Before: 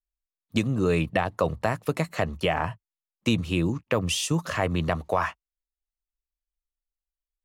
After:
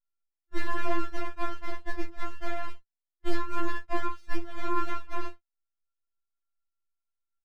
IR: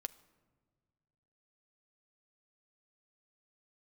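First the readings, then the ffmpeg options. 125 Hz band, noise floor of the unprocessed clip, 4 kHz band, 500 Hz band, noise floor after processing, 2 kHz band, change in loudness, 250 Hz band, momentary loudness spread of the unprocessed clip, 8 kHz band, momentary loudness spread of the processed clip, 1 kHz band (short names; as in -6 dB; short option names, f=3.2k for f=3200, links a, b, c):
-16.5 dB, under -85 dBFS, -14.0 dB, -11.5 dB, under -85 dBFS, -6.5 dB, -9.0 dB, -10.5 dB, 5 LU, -19.5 dB, 8 LU, -4.0 dB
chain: -af "aeval=exprs='val(0)*sin(2*PI*650*n/s)':c=same,lowpass=f=840:t=q:w=1.7,aecho=1:1:25|50:0.447|0.251,aeval=exprs='abs(val(0))':c=same,afftfilt=real='re*4*eq(mod(b,16),0)':imag='im*4*eq(mod(b,16),0)':win_size=2048:overlap=0.75,volume=-2.5dB"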